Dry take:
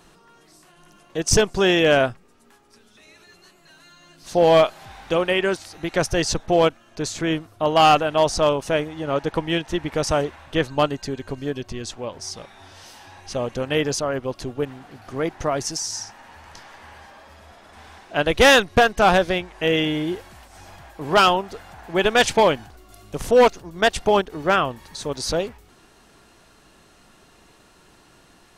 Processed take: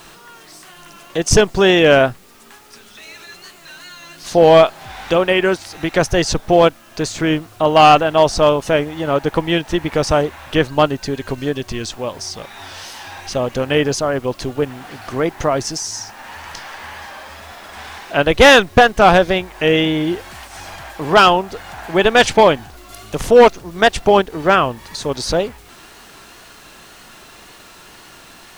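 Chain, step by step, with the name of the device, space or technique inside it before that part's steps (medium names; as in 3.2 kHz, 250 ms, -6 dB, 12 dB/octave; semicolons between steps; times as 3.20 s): noise-reduction cassette on a plain deck (tape noise reduction on one side only encoder only; wow and flutter; white noise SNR 30 dB); treble shelf 5.4 kHz -6 dB; trim +6 dB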